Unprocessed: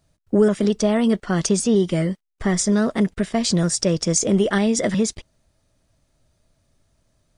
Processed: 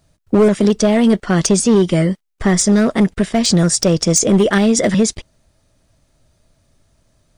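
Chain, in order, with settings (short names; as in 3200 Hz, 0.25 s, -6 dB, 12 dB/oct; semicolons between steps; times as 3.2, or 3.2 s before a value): hard clip -13 dBFS, distortion -17 dB; gain +6.5 dB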